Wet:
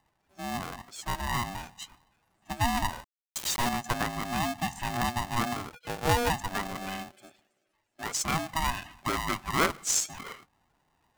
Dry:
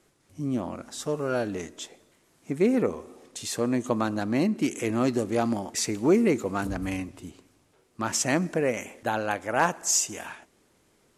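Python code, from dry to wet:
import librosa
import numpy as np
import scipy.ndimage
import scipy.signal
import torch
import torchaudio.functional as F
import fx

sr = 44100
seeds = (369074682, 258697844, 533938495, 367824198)

y = fx.band_shelf(x, sr, hz=540.0, db=-11.5, octaves=2.4, at=(7.12, 8.05), fade=0.02)
y = fx.spec_topn(y, sr, count=32)
y = fx.low_shelf(y, sr, hz=300.0, db=-11.0)
y = fx.quant_companded(y, sr, bits=2, at=(3.04, 3.69))
y = fx.lpc_vocoder(y, sr, seeds[0], excitation='pitch_kept', order=8, at=(5.69, 6.3))
y = y * np.sign(np.sin(2.0 * np.pi * 480.0 * np.arange(len(y)) / sr))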